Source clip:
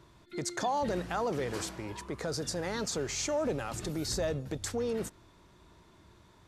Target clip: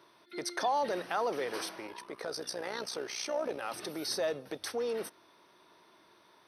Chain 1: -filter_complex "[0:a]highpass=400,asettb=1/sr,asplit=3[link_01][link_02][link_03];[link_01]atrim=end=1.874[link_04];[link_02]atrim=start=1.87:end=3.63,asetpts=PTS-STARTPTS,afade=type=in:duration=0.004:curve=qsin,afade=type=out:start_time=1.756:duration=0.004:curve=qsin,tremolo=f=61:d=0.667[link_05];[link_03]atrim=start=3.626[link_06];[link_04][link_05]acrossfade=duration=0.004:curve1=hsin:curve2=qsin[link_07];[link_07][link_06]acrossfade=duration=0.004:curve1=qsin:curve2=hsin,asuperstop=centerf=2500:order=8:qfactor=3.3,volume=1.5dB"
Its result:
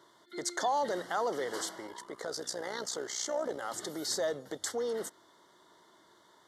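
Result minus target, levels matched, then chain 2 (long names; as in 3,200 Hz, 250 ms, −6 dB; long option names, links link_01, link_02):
8,000 Hz band +4.5 dB
-filter_complex "[0:a]highpass=400,asettb=1/sr,asplit=3[link_01][link_02][link_03];[link_01]atrim=end=1.874[link_04];[link_02]atrim=start=1.87:end=3.63,asetpts=PTS-STARTPTS,afade=type=in:duration=0.004:curve=qsin,afade=type=out:start_time=1.756:duration=0.004:curve=qsin,tremolo=f=61:d=0.667[link_05];[link_03]atrim=start=3.626[link_06];[link_04][link_05]acrossfade=duration=0.004:curve1=hsin:curve2=qsin[link_07];[link_07][link_06]acrossfade=duration=0.004:curve1=qsin:curve2=hsin,asuperstop=centerf=7200:order=8:qfactor=3.3,volume=1.5dB"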